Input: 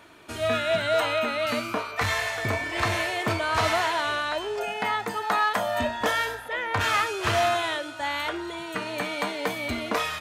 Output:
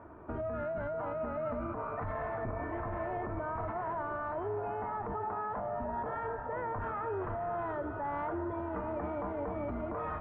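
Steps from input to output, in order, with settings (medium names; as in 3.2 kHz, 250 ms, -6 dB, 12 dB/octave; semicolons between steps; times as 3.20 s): octave divider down 2 oct, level -3 dB; low-pass 1.2 kHz 24 dB/octave; compressor with a negative ratio -30 dBFS, ratio -1; peak limiter -29.5 dBFS, peak gain reduction 11.5 dB; on a send: echo that smears into a reverb 711 ms, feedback 49%, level -11 dB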